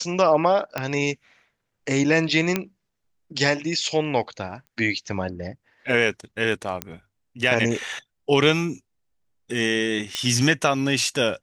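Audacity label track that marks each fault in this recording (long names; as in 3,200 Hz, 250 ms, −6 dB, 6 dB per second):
0.780000	0.780000	click −11 dBFS
2.560000	2.560000	click −7 dBFS
4.670000	4.670000	click −33 dBFS
6.820000	6.820000	click −10 dBFS
10.150000	10.150000	click −11 dBFS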